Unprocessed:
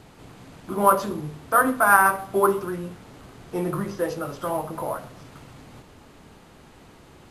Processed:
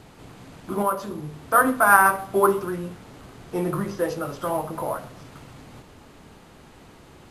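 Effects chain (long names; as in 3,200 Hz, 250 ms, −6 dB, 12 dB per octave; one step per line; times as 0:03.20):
0:00.82–0:01.48: downward compressor 1.5 to 1, threshold −35 dBFS, peak gain reduction 8.5 dB
level +1 dB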